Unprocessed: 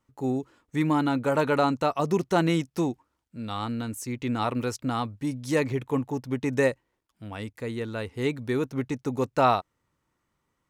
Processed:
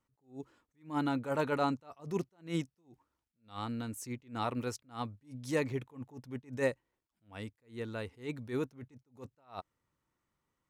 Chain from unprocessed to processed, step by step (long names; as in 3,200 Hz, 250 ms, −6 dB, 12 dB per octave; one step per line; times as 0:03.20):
level that may rise only so fast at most 200 dB per second
level −7 dB